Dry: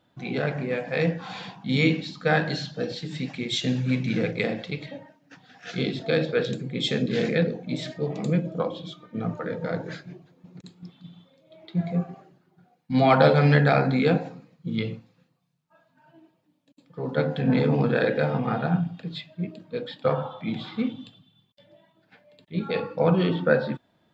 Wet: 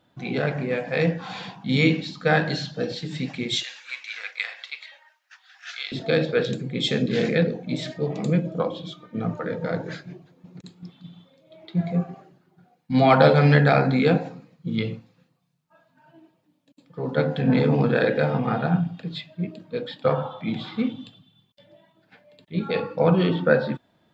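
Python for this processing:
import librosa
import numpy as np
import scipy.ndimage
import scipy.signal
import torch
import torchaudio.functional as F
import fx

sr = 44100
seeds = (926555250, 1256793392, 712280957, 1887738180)

y = fx.highpass(x, sr, hz=1100.0, slope=24, at=(3.63, 5.92))
y = y * librosa.db_to_amplitude(2.0)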